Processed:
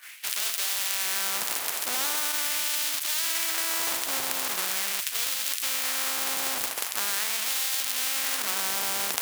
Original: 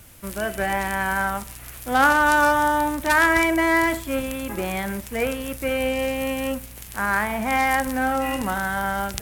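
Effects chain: half-waves squared off; in parallel at -2 dB: compressor, threshold -26 dBFS, peak gain reduction 14.5 dB; on the sum: limiter -11.5 dBFS, peak gain reduction 10 dB; LFO high-pass sine 0.42 Hz 770–3500 Hz; expander -28 dBFS; reverse; upward compressor, threshold -21 dBFS; reverse; spectral compressor 4:1; gain -2 dB

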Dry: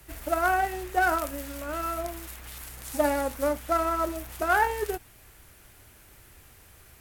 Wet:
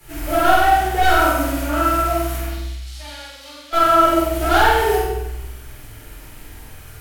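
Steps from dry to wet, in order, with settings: hard clip -22.5 dBFS, distortion -11 dB; 2.46–3.73 band-pass 4100 Hz, Q 2.6; flutter echo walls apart 8.2 m, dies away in 0.7 s; shoebox room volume 270 m³, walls mixed, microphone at 4 m; gain -1 dB

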